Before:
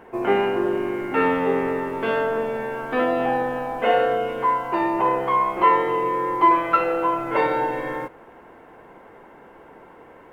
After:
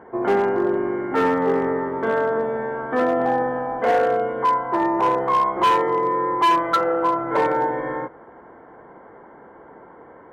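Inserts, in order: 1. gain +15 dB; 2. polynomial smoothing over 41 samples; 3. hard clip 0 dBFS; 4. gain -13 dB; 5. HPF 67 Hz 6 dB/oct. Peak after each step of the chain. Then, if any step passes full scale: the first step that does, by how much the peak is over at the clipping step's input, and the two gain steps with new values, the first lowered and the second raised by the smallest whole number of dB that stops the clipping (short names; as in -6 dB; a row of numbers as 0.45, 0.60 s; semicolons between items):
+10.0, +9.5, 0.0, -13.0, -11.5 dBFS; step 1, 9.5 dB; step 1 +5 dB, step 4 -3 dB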